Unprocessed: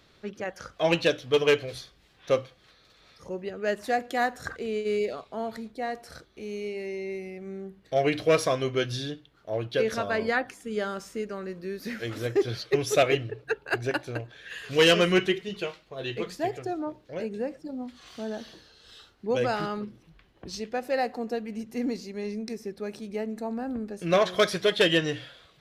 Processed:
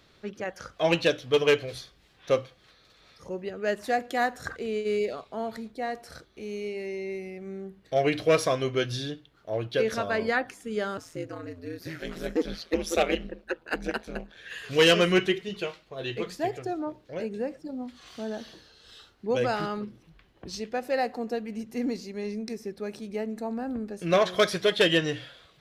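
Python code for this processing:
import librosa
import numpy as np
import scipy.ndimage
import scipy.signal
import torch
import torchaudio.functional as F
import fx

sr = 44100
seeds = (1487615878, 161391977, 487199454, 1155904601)

y = fx.ring_mod(x, sr, carrier_hz=82.0, at=(10.97, 14.37))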